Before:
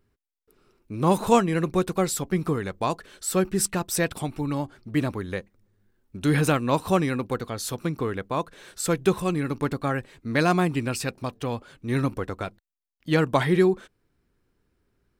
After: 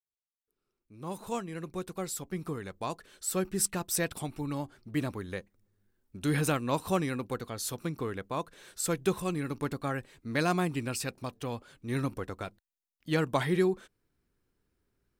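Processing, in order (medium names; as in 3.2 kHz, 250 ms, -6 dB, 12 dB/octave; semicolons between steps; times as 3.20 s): fade-in on the opening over 3.88 s; treble shelf 5.4 kHz +6 dB; trim -7 dB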